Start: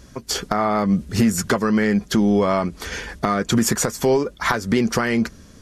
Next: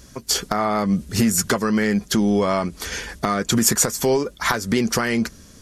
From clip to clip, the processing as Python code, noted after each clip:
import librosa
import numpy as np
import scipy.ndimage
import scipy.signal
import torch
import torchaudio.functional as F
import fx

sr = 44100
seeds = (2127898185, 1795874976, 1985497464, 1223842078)

y = fx.high_shelf(x, sr, hz=4400.0, db=9.0)
y = y * librosa.db_to_amplitude(-1.5)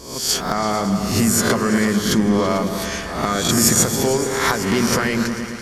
y = fx.spec_swells(x, sr, rise_s=0.65)
y = fx.echo_opening(y, sr, ms=111, hz=400, octaves=2, feedback_pct=70, wet_db=-6)
y = y * librosa.db_to_amplitude(-1.0)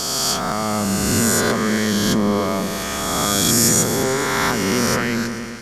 y = fx.spec_swells(x, sr, rise_s=2.75)
y = y * librosa.db_to_amplitude(-4.5)